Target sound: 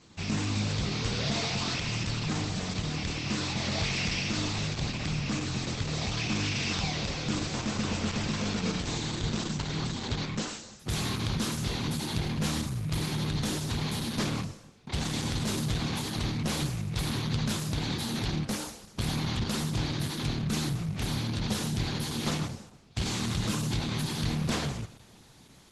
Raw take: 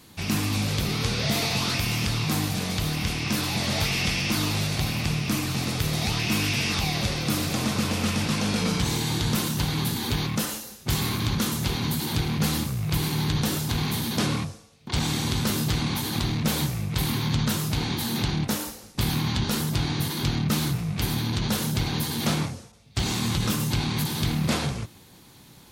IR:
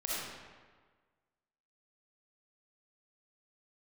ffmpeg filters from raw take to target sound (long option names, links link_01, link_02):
-filter_complex "[0:a]aeval=exprs='clip(val(0),-1,0.0794)':channel_layout=same,asplit=2[link_01][link_02];[1:a]atrim=start_sample=2205,adelay=49[link_03];[link_02][link_03]afir=irnorm=-1:irlink=0,volume=-23.5dB[link_04];[link_01][link_04]amix=inputs=2:normalize=0,volume=-3.5dB" -ar 48000 -c:a libopus -b:a 12k